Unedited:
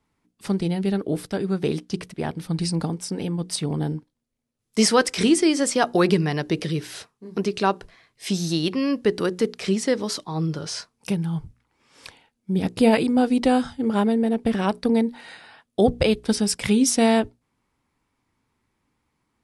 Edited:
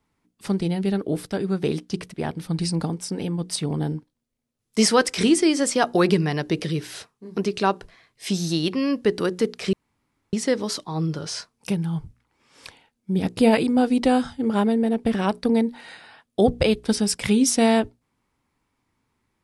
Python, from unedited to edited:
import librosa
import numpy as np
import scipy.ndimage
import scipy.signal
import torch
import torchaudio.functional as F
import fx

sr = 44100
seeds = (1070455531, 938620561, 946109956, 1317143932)

y = fx.edit(x, sr, fx.insert_room_tone(at_s=9.73, length_s=0.6), tone=tone)